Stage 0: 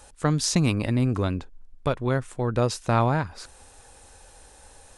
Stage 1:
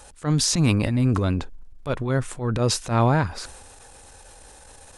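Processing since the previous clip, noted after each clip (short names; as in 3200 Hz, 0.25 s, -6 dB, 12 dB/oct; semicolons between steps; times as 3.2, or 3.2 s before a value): transient shaper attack -12 dB, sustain +5 dB; gain +3.5 dB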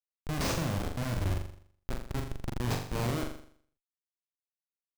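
added harmonics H 7 -26 dB, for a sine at -6 dBFS; Schmitt trigger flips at -20 dBFS; flutter echo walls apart 7.1 m, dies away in 0.56 s; gain -6 dB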